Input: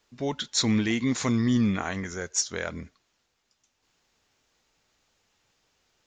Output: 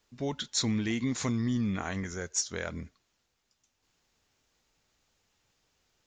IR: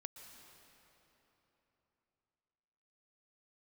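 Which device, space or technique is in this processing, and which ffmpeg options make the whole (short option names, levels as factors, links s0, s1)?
ASMR close-microphone chain: -af "lowshelf=f=200:g=5.5,acompressor=threshold=0.0891:ratio=6,highshelf=f=7600:g=4.5,volume=0.596"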